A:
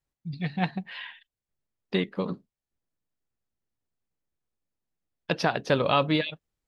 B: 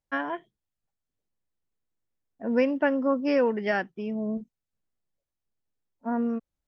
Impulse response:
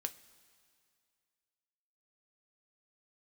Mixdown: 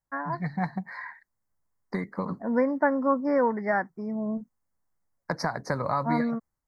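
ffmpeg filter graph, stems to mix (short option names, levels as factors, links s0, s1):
-filter_complex "[0:a]acrossover=split=120|3000[s0][s1][s2];[s1]acompressor=threshold=0.0398:ratio=6[s3];[s0][s3][s2]amix=inputs=3:normalize=0,volume=0.631[s4];[1:a]acrossover=split=2500[s5][s6];[s6]acompressor=threshold=0.00251:ratio=4:attack=1:release=60[s7];[s5][s7]amix=inputs=2:normalize=0,volume=0.531[s8];[s4][s8]amix=inputs=2:normalize=0,asuperstop=centerf=3000:order=12:qfactor=1.6,dynaudnorm=f=150:g=5:m=2,equalizer=f=400:t=o:w=0.67:g=-5,equalizer=f=1000:t=o:w=0.67:g=7,equalizer=f=4000:t=o:w=0.67:g=-8"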